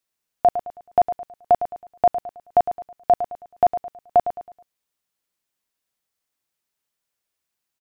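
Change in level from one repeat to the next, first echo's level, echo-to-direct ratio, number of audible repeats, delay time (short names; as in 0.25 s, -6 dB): -8.5 dB, -11.0 dB, -10.5 dB, 3, 0.107 s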